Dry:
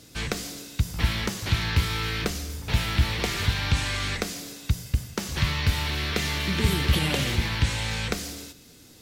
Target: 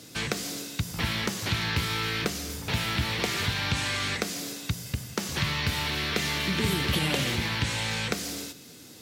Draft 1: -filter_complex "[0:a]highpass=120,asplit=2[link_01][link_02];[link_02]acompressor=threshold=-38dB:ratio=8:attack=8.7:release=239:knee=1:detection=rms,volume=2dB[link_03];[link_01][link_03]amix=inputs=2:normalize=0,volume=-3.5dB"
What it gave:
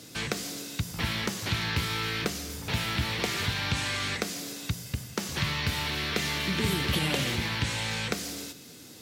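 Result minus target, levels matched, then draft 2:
downward compressor: peak gain reduction +5 dB
-filter_complex "[0:a]highpass=120,asplit=2[link_01][link_02];[link_02]acompressor=threshold=-32dB:ratio=8:attack=8.7:release=239:knee=1:detection=rms,volume=2dB[link_03];[link_01][link_03]amix=inputs=2:normalize=0,volume=-3.5dB"

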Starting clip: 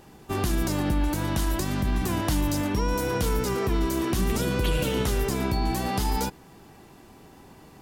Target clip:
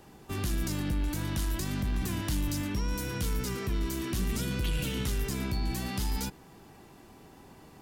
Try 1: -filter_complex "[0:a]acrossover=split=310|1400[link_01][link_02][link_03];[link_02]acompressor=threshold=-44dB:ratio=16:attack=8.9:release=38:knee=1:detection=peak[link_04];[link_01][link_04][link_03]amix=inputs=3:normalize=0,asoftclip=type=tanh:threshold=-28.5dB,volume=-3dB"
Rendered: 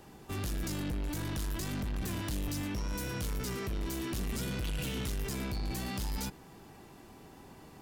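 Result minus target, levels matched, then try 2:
soft clipping: distortion +11 dB
-filter_complex "[0:a]acrossover=split=310|1400[link_01][link_02][link_03];[link_02]acompressor=threshold=-44dB:ratio=16:attack=8.9:release=38:knee=1:detection=peak[link_04];[link_01][link_04][link_03]amix=inputs=3:normalize=0,asoftclip=type=tanh:threshold=-19dB,volume=-3dB"

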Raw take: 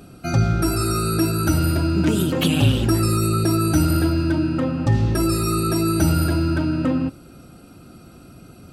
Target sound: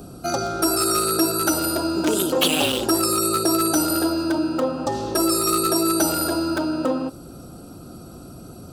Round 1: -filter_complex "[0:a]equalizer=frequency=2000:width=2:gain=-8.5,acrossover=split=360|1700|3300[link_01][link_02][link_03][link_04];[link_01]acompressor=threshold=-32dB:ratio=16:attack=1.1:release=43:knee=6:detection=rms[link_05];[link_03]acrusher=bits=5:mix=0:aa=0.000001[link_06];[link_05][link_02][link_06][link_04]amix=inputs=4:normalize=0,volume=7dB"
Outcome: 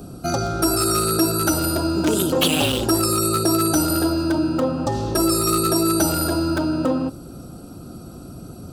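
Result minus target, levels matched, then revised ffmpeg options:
downward compressor: peak gain reduction −11 dB
-filter_complex "[0:a]equalizer=frequency=2000:width=2:gain=-8.5,acrossover=split=360|1700|3300[link_01][link_02][link_03][link_04];[link_01]acompressor=threshold=-43.5dB:ratio=16:attack=1.1:release=43:knee=6:detection=rms[link_05];[link_03]acrusher=bits=5:mix=0:aa=0.000001[link_06];[link_05][link_02][link_06][link_04]amix=inputs=4:normalize=0,volume=7dB"

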